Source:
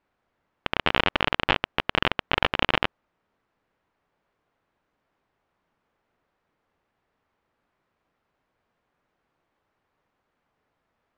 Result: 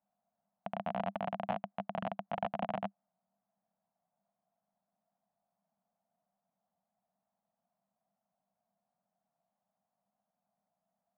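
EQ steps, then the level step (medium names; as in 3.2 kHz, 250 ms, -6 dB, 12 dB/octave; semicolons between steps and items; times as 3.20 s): two resonant band-passes 370 Hz, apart 1.8 oct; 0.0 dB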